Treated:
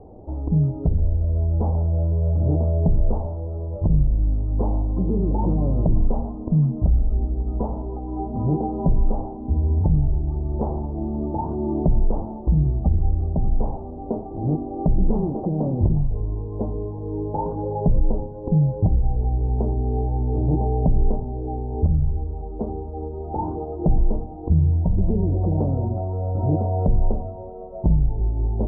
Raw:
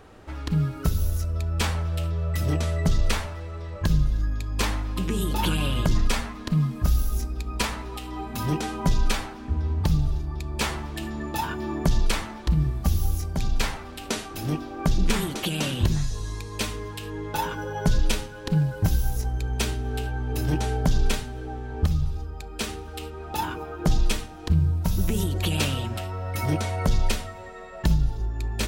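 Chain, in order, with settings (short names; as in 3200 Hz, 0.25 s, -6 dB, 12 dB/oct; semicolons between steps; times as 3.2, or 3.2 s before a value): steep low-pass 830 Hz 48 dB/oct; in parallel at +1 dB: limiter -21.5 dBFS, peak gain reduction 11 dB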